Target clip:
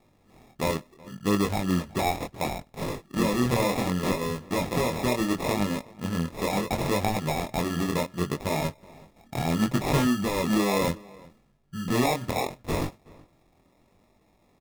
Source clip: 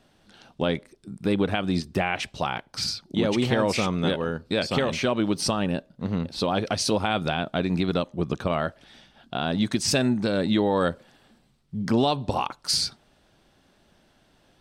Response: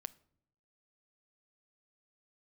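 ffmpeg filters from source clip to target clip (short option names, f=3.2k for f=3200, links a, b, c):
-filter_complex "[0:a]asettb=1/sr,asplit=3[a][b][c];[a]atrim=end=9.354[d];[b]atrim=start=9.35:end=10.05,asetpts=PTS-STARTPTS,afade=t=in:d=0.004:c=qsin,afade=t=out:st=0.696:d=0.004:c=qsin,equalizer=f=130:w=4:g=12.5[e];[c]atrim=start=10.046[f];[d][e]acrossfade=d=0.004:c1=hsin:c2=qsin[g];[g][f]acrossfade=d=0.004:c1=qsin:c2=hsin,acrusher=samples=29:mix=1:aa=0.000001,flanger=delay=19.5:depth=5.6:speed=0.7,asplit=2[h][i];[i]adelay=373.2,volume=-23dB,highshelf=f=4k:g=-8.4[j];[h][j]amix=inputs=2:normalize=0,volume=1dB"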